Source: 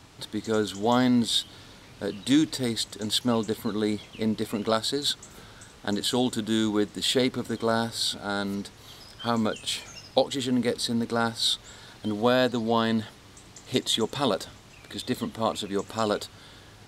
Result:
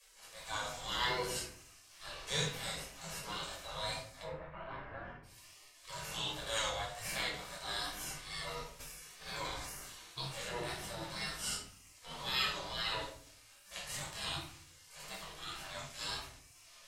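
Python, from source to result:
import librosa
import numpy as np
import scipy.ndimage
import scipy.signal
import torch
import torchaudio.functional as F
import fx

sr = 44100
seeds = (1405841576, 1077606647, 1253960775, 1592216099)

y = fx.spec_gate(x, sr, threshold_db=-20, keep='weak')
y = fx.lowpass(y, sr, hz=1900.0, slope=24, at=(4.22, 5.23), fade=0.02)
y = fx.hpss(y, sr, part='percussive', gain_db=-14)
y = fx.wow_flutter(y, sr, seeds[0], rate_hz=2.1, depth_cents=72.0)
y = fx.room_shoebox(y, sr, seeds[1], volume_m3=690.0, walls='furnished', distance_m=5.6)
y = fx.sustainer(y, sr, db_per_s=25.0, at=(8.79, 10.27), fade=0.02)
y = F.gain(torch.from_numpy(y), -1.0).numpy()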